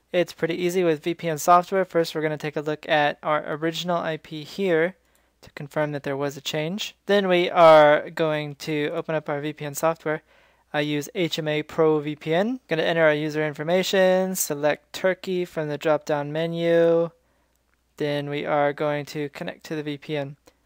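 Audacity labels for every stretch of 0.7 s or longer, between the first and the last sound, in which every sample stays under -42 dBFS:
17.090000	17.980000	silence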